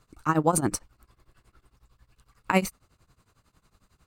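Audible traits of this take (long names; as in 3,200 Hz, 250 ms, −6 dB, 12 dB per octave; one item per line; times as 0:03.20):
tremolo triangle 11 Hz, depth 95%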